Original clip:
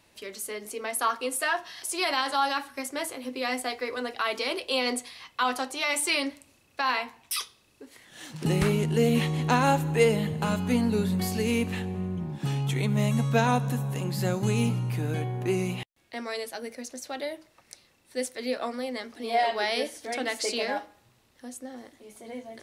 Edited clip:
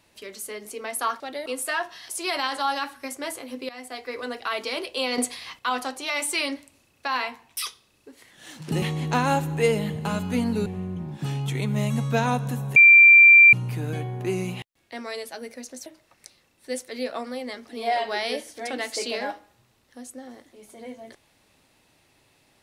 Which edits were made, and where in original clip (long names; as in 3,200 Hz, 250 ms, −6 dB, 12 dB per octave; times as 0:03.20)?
0:03.43–0:03.94: fade in, from −17 dB
0:04.92–0:05.33: clip gain +6.5 dB
0:08.56–0:09.19: remove
0:11.03–0:11.87: remove
0:13.97–0:14.74: beep over 2,360 Hz −8 dBFS
0:17.07–0:17.33: move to 0:01.20